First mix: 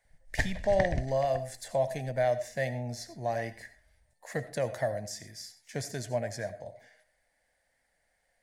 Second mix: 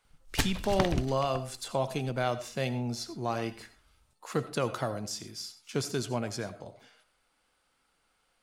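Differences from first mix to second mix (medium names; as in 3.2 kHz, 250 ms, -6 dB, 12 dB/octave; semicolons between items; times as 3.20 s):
background: remove distance through air 88 m; master: remove FFT filter 100 Hz 0 dB, 390 Hz -10 dB, 620 Hz +7 dB, 1.3 kHz -18 dB, 1.8 kHz +10 dB, 2.7 kHz -11 dB, 6.5 kHz -2 dB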